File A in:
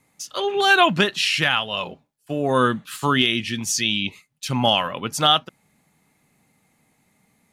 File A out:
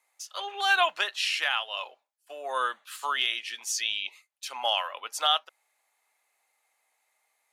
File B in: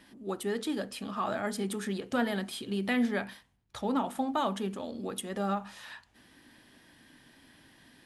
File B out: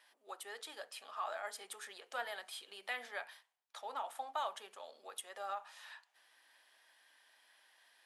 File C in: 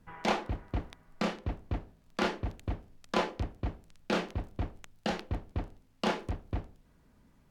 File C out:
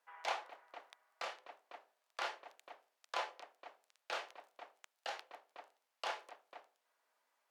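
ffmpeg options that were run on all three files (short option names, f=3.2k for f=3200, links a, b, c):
-af "highpass=f=620:w=0.5412,highpass=f=620:w=1.3066,volume=-7dB"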